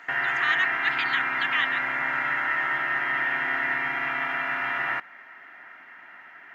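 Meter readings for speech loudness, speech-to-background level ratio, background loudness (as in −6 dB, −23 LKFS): −28.0 LKFS, −3.0 dB, −25.0 LKFS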